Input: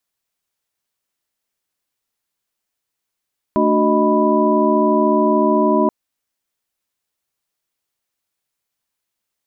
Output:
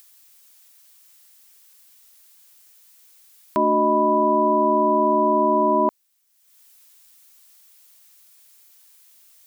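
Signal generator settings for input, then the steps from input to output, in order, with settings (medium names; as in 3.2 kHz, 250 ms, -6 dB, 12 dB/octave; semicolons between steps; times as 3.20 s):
chord A3/D4/F#4/D#5/B5 sine, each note -18.5 dBFS 2.33 s
tilt EQ +3.5 dB/octave; upward compressor, threshold -39 dBFS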